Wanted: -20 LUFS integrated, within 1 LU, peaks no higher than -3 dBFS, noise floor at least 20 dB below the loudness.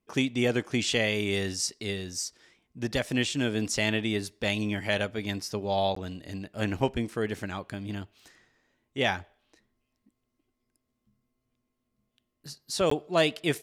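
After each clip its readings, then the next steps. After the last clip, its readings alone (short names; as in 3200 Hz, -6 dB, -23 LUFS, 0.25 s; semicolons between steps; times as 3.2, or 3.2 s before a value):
dropouts 2; longest dropout 14 ms; loudness -29.5 LUFS; peak -11.0 dBFS; loudness target -20.0 LUFS
-> interpolate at 5.95/12.9, 14 ms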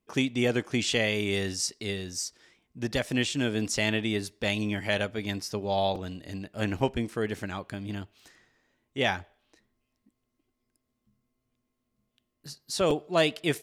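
dropouts 0; loudness -29.5 LUFS; peak -11.0 dBFS; loudness target -20.0 LUFS
-> gain +9.5 dB; limiter -3 dBFS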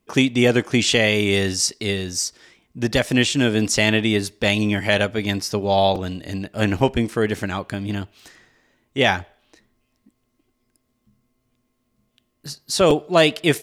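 loudness -20.0 LUFS; peak -3.0 dBFS; noise floor -71 dBFS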